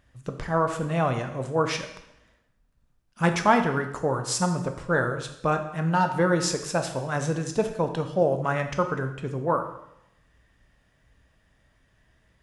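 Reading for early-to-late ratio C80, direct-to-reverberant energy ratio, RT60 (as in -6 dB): 11.5 dB, 5.5 dB, 0.80 s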